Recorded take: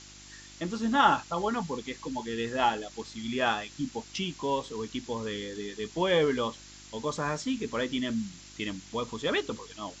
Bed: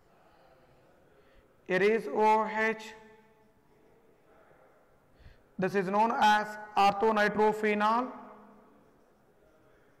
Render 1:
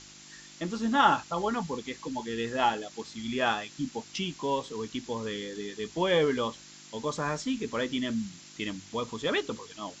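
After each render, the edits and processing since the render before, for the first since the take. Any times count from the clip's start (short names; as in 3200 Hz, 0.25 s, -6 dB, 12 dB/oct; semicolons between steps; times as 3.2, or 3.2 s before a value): de-hum 50 Hz, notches 2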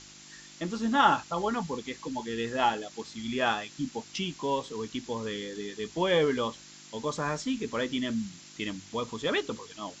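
nothing audible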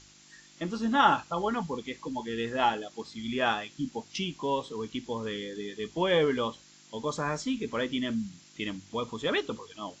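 noise print and reduce 6 dB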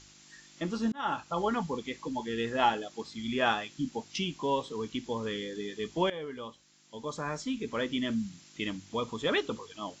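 0.92–1.39 fade in; 6.1–8.17 fade in, from -17 dB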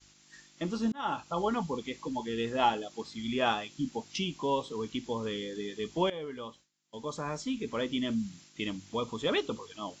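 dynamic EQ 1700 Hz, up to -6 dB, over -50 dBFS, Q 2.6; expander -51 dBFS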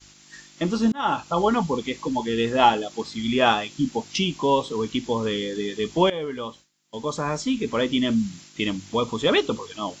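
gain +9.5 dB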